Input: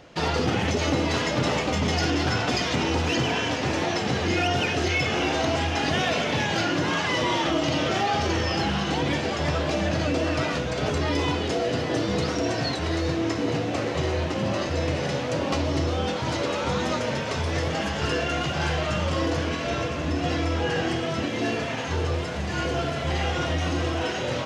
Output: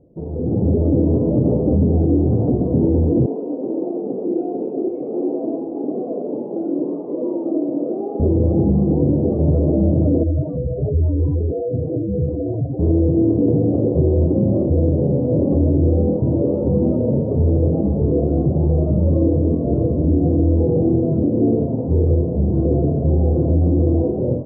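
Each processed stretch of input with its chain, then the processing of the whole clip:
0:03.26–0:08.20: high-pass filter 270 Hz 24 dB per octave + flanger 1.5 Hz, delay 3.2 ms, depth 8.7 ms, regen −65%
0:10.23–0:12.79: expanding power law on the bin magnitudes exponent 2.3 + parametric band 260 Hz −11 dB 1.9 octaves
whole clip: inverse Chebyshev low-pass filter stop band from 1,600 Hz, stop band 60 dB; brickwall limiter −21 dBFS; automatic gain control gain up to 13 dB

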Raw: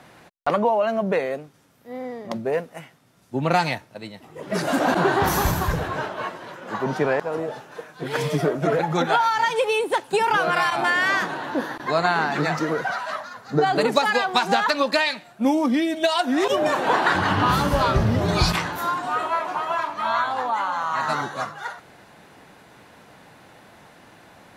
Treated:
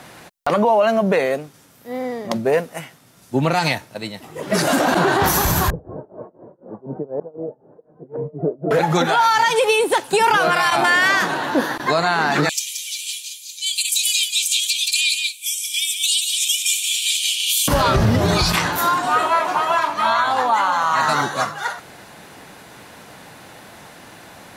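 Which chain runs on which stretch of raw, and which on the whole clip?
0:05.70–0:08.71: transistor ladder low-pass 660 Hz, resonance 25% + amplitude tremolo 4 Hz, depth 93%
0:12.49–0:17.68: Chebyshev high-pass with heavy ripple 2,300 Hz, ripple 9 dB + spectral tilt +4.5 dB per octave + single-tap delay 177 ms −8 dB
whole clip: high-shelf EQ 4,300 Hz +8 dB; brickwall limiter −14 dBFS; level +6.5 dB

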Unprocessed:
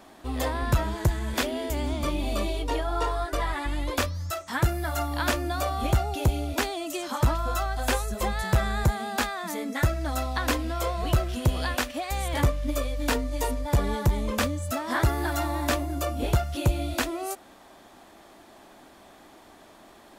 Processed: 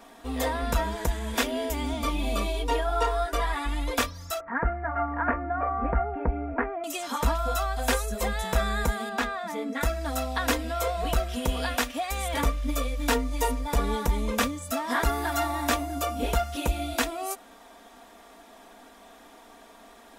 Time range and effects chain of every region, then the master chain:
0:04.40–0:06.84: Butterworth low-pass 2,000 Hz 48 dB per octave + upward compression, threshold −37 dBFS
0:09.09–0:09.81: low-pass filter 2,400 Hz 6 dB per octave + mains-hum notches 60/120/180/240/300/360/420/480/540 Hz
whole clip: parametric band 120 Hz −12.5 dB 1.1 octaves; notch filter 4,400 Hz, Q 14; comb filter 4.3 ms, depth 61%

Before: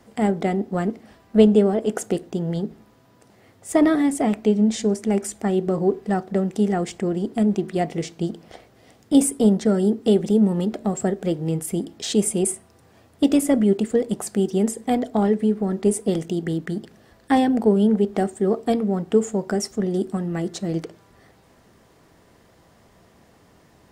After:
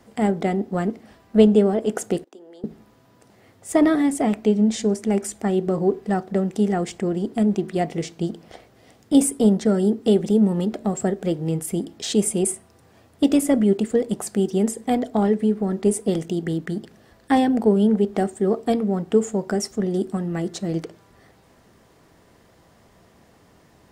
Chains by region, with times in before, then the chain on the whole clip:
0:02.24–0:02.64: noise gate −44 dBFS, range −20 dB + Butterworth high-pass 250 Hz 48 dB per octave + downward compressor 2 to 1, threshold −54 dBFS
whole clip: no processing

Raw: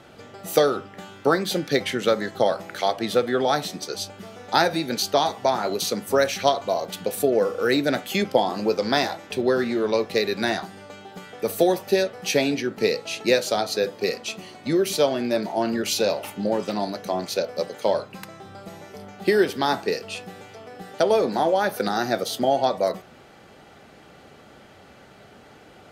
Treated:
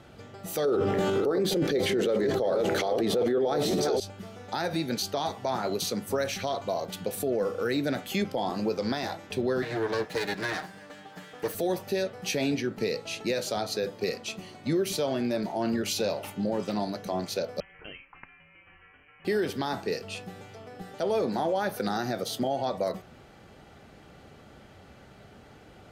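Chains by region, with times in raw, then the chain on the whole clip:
0:00.65–0:04.00: delay that plays each chunk backwards 340 ms, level −11.5 dB + parametric band 420 Hz +14 dB 1.1 octaves + envelope flattener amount 70%
0:09.62–0:11.55: lower of the sound and its delayed copy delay 6.5 ms + high-pass filter 160 Hz + parametric band 1,700 Hz +9.5 dB 0.25 octaves
0:17.60–0:19.25: high-pass filter 1,300 Hz 24 dB per octave + voice inversion scrambler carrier 3,700 Hz
whole clip: low-shelf EQ 140 Hz +11.5 dB; brickwall limiter −14 dBFS; level −5 dB

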